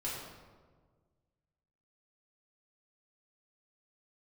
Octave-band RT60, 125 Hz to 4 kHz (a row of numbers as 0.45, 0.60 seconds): 2.1, 1.8, 1.7, 1.4, 1.0, 0.85 seconds